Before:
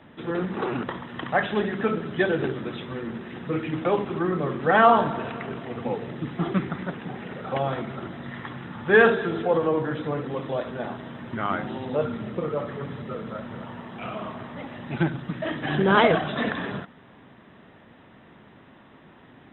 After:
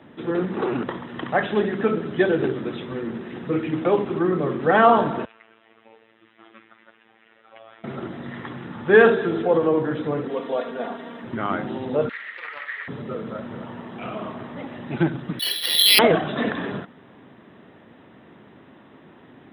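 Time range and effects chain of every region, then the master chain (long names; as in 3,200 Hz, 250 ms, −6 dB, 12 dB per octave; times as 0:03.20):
0:05.25–0:07.84: low-pass filter 3,000 Hz 24 dB per octave + phases set to zero 112 Hz + first difference
0:10.28–0:11.24: bass and treble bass −12 dB, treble 0 dB + comb filter 4.3 ms, depth 73%
0:12.09–0:12.88: high-pass with resonance 1,900 Hz, resonance Q 9.8 + highs frequency-modulated by the lows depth 0.19 ms
0:15.39–0:15.99: tilt shelving filter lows +5 dB, about 1,500 Hz + voice inversion scrambler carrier 3,600 Hz + bad sample-rate conversion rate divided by 6×, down none, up hold
whole clip: high-pass filter 69 Hz; parametric band 350 Hz +5 dB 1.4 octaves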